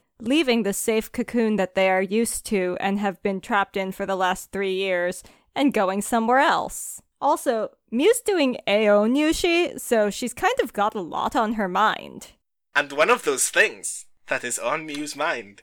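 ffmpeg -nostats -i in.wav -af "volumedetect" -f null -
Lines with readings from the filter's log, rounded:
mean_volume: -23.0 dB
max_volume: -6.5 dB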